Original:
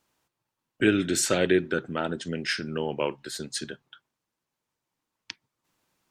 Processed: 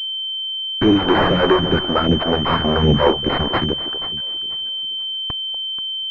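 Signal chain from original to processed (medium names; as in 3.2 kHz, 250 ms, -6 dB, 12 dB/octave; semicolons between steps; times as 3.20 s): 2.64–3.60 s: bass shelf 230 Hz +10.5 dB; in parallel at -2 dB: level held to a coarse grid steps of 10 dB; on the sum: fuzz box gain 29 dB, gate -37 dBFS; echo whose repeats swap between lows and highs 242 ms, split 970 Hz, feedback 52%, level -10.5 dB; phase shifter stages 2, 2.5 Hz, lowest notch 110–1200 Hz; class-D stage that switches slowly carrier 3.1 kHz; trim +5.5 dB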